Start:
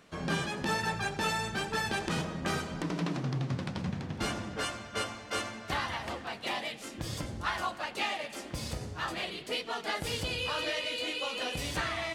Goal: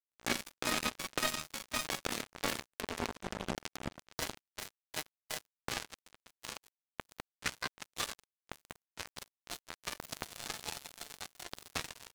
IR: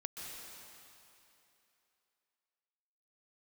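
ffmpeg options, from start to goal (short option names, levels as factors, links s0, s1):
-filter_complex "[0:a]asetrate=62367,aresample=44100,atempo=0.707107,asplit=2[s0][s1];[s1]adelay=460.6,volume=0.501,highshelf=f=4000:g=-10.4[s2];[s0][s2]amix=inputs=2:normalize=0,acrusher=bits=3:mix=0:aa=0.5,volume=1.19"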